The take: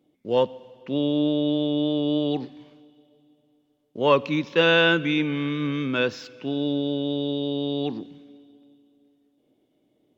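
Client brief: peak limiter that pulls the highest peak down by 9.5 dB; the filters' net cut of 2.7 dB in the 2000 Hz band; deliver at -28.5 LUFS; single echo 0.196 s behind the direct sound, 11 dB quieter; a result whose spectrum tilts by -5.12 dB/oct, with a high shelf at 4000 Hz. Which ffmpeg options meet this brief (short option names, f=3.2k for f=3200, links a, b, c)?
-af "equalizer=f=2k:t=o:g=-3.5,highshelf=f=4k:g=-3,alimiter=limit=-16.5dB:level=0:latency=1,aecho=1:1:196:0.282,volume=-1.5dB"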